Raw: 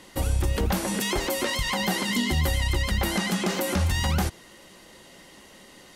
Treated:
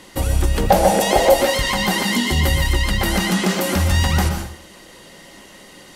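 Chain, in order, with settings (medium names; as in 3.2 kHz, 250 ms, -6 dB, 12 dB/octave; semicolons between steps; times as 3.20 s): 0.69–1.34 s: high-order bell 630 Hz +14 dB 1 oct; plate-style reverb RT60 0.53 s, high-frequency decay 0.9×, pre-delay 110 ms, DRR 5 dB; trim +5.5 dB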